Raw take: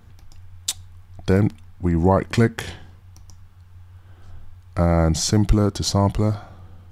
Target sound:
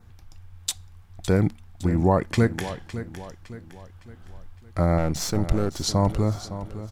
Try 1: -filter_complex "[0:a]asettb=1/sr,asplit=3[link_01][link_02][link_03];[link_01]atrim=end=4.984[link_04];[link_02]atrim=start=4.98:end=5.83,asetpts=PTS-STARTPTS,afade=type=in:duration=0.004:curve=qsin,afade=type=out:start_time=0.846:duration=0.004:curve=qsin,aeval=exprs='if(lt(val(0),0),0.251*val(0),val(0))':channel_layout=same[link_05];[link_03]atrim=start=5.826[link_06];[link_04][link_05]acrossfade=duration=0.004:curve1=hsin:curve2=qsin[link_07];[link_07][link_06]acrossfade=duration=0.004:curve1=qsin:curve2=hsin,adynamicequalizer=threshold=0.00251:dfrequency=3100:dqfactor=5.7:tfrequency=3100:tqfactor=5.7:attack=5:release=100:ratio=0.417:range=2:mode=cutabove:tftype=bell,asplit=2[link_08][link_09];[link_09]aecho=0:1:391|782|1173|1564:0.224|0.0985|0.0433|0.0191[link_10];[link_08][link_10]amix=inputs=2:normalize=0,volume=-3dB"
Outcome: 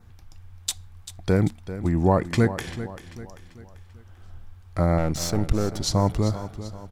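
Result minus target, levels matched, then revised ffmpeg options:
echo 169 ms early
-filter_complex "[0:a]asettb=1/sr,asplit=3[link_01][link_02][link_03];[link_01]atrim=end=4.984[link_04];[link_02]atrim=start=4.98:end=5.83,asetpts=PTS-STARTPTS,afade=type=in:duration=0.004:curve=qsin,afade=type=out:start_time=0.846:duration=0.004:curve=qsin,aeval=exprs='if(lt(val(0),0),0.251*val(0),val(0))':channel_layout=same[link_05];[link_03]atrim=start=5.826[link_06];[link_04][link_05]acrossfade=duration=0.004:curve1=hsin:curve2=qsin[link_07];[link_07][link_06]acrossfade=duration=0.004:curve1=qsin:curve2=hsin,adynamicequalizer=threshold=0.00251:dfrequency=3100:dqfactor=5.7:tfrequency=3100:tqfactor=5.7:attack=5:release=100:ratio=0.417:range=2:mode=cutabove:tftype=bell,asplit=2[link_08][link_09];[link_09]aecho=0:1:560|1120|1680|2240:0.224|0.0985|0.0433|0.0191[link_10];[link_08][link_10]amix=inputs=2:normalize=0,volume=-3dB"

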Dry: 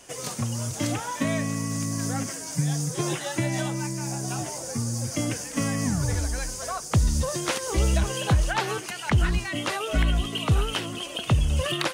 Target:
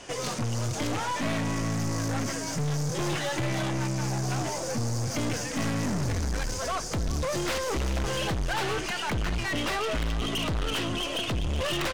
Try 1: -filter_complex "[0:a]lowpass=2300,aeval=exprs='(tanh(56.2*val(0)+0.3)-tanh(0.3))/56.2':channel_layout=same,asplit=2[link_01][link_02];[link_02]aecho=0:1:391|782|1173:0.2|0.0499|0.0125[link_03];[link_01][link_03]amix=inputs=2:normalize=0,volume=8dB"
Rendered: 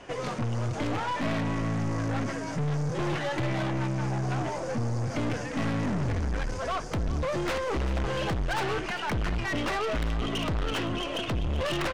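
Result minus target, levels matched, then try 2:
4,000 Hz band −4.0 dB
-filter_complex "[0:a]lowpass=5100,aeval=exprs='(tanh(56.2*val(0)+0.3)-tanh(0.3))/56.2':channel_layout=same,asplit=2[link_01][link_02];[link_02]aecho=0:1:391|782|1173:0.2|0.0499|0.0125[link_03];[link_01][link_03]amix=inputs=2:normalize=0,volume=8dB"

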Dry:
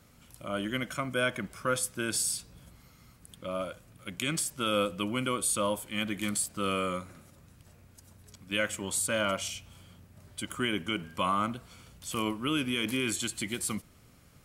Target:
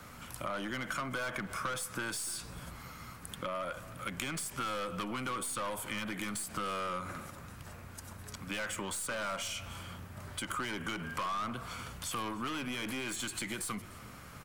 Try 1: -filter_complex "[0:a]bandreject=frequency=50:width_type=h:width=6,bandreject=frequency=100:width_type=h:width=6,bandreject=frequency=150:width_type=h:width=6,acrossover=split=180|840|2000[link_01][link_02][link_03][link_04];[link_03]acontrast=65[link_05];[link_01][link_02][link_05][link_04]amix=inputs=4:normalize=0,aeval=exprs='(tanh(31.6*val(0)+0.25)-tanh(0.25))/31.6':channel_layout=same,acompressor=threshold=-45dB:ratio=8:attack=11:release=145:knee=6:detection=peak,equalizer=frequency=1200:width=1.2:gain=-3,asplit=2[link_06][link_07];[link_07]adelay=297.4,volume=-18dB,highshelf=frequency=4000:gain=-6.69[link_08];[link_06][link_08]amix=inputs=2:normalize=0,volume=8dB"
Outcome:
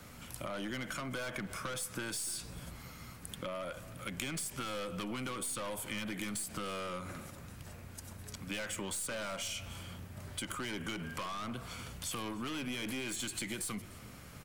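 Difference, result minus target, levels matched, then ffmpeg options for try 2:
1,000 Hz band −4.0 dB
-filter_complex "[0:a]bandreject=frequency=50:width_type=h:width=6,bandreject=frequency=100:width_type=h:width=6,bandreject=frequency=150:width_type=h:width=6,acrossover=split=180|840|2000[link_01][link_02][link_03][link_04];[link_03]acontrast=65[link_05];[link_01][link_02][link_05][link_04]amix=inputs=4:normalize=0,aeval=exprs='(tanh(31.6*val(0)+0.25)-tanh(0.25))/31.6':channel_layout=same,acompressor=threshold=-45dB:ratio=8:attack=11:release=145:knee=6:detection=peak,equalizer=frequency=1200:width=1.2:gain=3.5,asplit=2[link_06][link_07];[link_07]adelay=297.4,volume=-18dB,highshelf=frequency=4000:gain=-6.69[link_08];[link_06][link_08]amix=inputs=2:normalize=0,volume=8dB"

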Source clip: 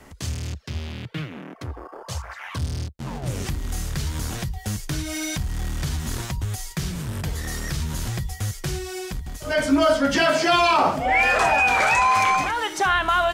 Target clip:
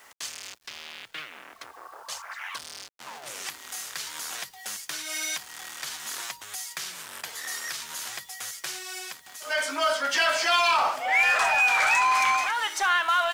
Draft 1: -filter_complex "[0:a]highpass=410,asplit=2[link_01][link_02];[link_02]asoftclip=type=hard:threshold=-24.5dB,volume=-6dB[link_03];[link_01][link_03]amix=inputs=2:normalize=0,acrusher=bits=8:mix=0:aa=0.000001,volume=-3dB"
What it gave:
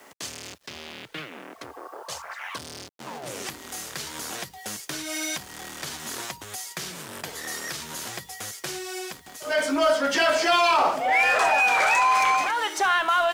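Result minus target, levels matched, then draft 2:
500 Hz band +5.5 dB
-filter_complex "[0:a]highpass=990,asplit=2[link_01][link_02];[link_02]asoftclip=type=hard:threshold=-24.5dB,volume=-6dB[link_03];[link_01][link_03]amix=inputs=2:normalize=0,acrusher=bits=8:mix=0:aa=0.000001,volume=-3dB"

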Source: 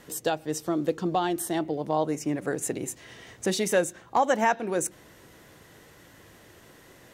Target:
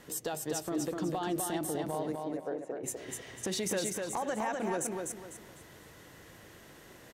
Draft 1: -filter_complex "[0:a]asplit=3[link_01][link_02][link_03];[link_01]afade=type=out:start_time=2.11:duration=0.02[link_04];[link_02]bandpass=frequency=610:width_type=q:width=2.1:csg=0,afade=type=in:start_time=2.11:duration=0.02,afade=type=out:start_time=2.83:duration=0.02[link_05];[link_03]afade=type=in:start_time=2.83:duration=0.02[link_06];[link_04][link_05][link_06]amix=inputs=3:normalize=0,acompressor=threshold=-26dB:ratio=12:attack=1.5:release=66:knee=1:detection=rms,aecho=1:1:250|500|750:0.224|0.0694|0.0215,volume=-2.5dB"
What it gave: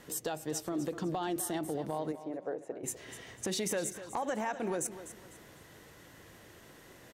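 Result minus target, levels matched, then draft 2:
echo-to-direct −9.5 dB
-filter_complex "[0:a]asplit=3[link_01][link_02][link_03];[link_01]afade=type=out:start_time=2.11:duration=0.02[link_04];[link_02]bandpass=frequency=610:width_type=q:width=2.1:csg=0,afade=type=in:start_time=2.11:duration=0.02,afade=type=out:start_time=2.83:duration=0.02[link_05];[link_03]afade=type=in:start_time=2.83:duration=0.02[link_06];[link_04][link_05][link_06]amix=inputs=3:normalize=0,acompressor=threshold=-26dB:ratio=12:attack=1.5:release=66:knee=1:detection=rms,aecho=1:1:250|500|750|1000:0.668|0.207|0.0642|0.0199,volume=-2.5dB"

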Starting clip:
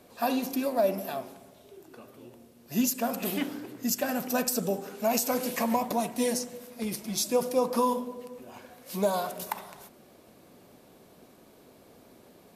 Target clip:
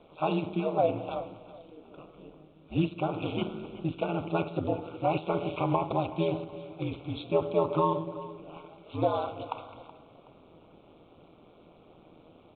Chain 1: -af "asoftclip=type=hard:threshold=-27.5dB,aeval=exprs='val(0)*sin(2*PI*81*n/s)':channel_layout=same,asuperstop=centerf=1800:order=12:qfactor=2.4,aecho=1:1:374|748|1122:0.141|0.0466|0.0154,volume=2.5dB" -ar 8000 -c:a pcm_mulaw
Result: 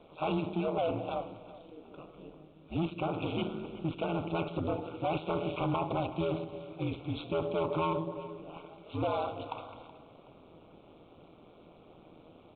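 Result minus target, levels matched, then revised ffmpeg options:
hard clipping: distortion +30 dB
-af "asoftclip=type=hard:threshold=-15.5dB,aeval=exprs='val(0)*sin(2*PI*81*n/s)':channel_layout=same,asuperstop=centerf=1800:order=12:qfactor=2.4,aecho=1:1:374|748|1122:0.141|0.0466|0.0154,volume=2.5dB" -ar 8000 -c:a pcm_mulaw

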